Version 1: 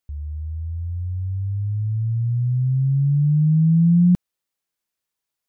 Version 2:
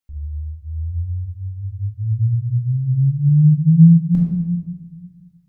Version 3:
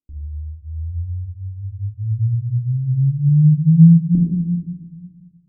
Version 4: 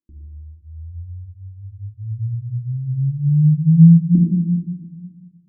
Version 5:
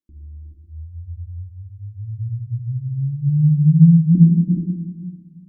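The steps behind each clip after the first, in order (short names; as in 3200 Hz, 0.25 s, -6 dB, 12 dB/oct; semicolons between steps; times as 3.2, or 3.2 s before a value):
shoebox room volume 730 m³, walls mixed, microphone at 2.2 m; gain -5 dB
synth low-pass 330 Hz, resonance Q 3.7; gain -2 dB
small resonant body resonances 210/320 Hz, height 16 dB; gain -10 dB
non-linear reverb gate 0.44 s rising, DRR 1.5 dB; gain -2 dB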